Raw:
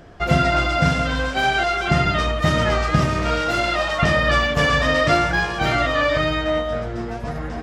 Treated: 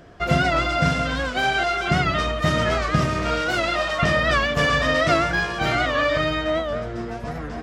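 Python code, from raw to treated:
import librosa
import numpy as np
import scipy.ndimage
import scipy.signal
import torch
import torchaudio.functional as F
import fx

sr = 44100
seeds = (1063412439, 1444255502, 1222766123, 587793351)

y = fx.low_shelf(x, sr, hz=70.0, db=-5.5)
y = fx.notch(y, sr, hz=840.0, q=12.0)
y = fx.record_warp(y, sr, rpm=78.0, depth_cents=100.0)
y = y * librosa.db_to_amplitude(-1.5)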